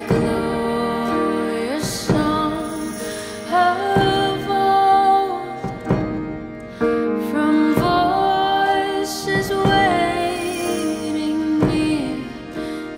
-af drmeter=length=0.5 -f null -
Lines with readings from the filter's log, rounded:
Channel 1: DR: 8.5
Overall DR: 8.5